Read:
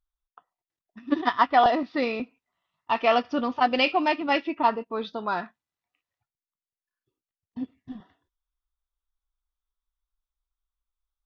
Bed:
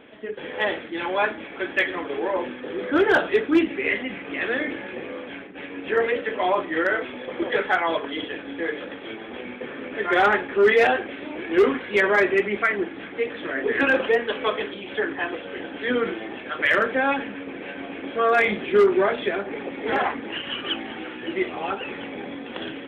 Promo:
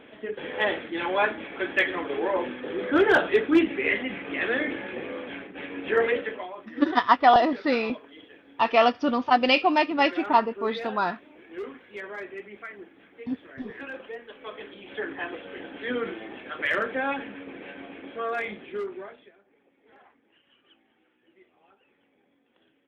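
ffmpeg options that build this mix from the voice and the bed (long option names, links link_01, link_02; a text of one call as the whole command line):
ffmpeg -i stem1.wav -i stem2.wav -filter_complex "[0:a]adelay=5700,volume=2dB[link_01];[1:a]volume=11.5dB,afade=type=out:start_time=6.15:duration=0.33:silence=0.133352,afade=type=in:start_time=14.38:duration=0.77:silence=0.237137,afade=type=out:start_time=17.56:duration=1.77:silence=0.0421697[link_02];[link_01][link_02]amix=inputs=2:normalize=0" out.wav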